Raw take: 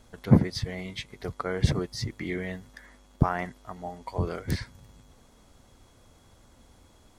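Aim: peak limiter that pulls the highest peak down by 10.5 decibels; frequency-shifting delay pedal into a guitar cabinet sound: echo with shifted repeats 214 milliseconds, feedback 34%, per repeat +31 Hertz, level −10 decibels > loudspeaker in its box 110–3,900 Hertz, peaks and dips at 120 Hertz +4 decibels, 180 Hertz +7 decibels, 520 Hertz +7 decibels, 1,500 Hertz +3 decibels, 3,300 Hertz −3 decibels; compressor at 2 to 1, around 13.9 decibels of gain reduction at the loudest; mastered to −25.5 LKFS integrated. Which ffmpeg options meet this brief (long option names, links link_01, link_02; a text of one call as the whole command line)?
ffmpeg -i in.wav -filter_complex "[0:a]acompressor=threshold=-39dB:ratio=2,alimiter=level_in=5.5dB:limit=-24dB:level=0:latency=1,volume=-5.5dB,asplit=5[link_01][link_02][link_03][link_04][link_05];[link_02]adelay=214,afreqshift=31,volume=-10dB[link_06];[link_03]adelay=428,afreqshift=62,volume=-19.4dB[link_07];[link_04]adelay=642,afreqshift=93,volume=-28.7dB[link_08];[link_05]adelay=856,afreqshift=124,volume=-38.1dB[link_09];[link_01][link_06][link_07][link_08][link_09]amix=inputs=5:normalize=0,highpass=110,equalizer=frequency=120:width_type=q:width=4:gain=4,equalizer=frequency=180:width_type=q:width=4:gain=7,equalizer=frequency=520:width_type=q:width=4:gain=7,equalizer=frequency=1500:width_type=q:width=4:gain=3,equalizer=frequency=3300:width_type=q:width=4:gain=-3,lowpass=frequency=3900:width=0.5412,lowpass=frequency=3900:width=1.3066,volume=14.5dB" out.wav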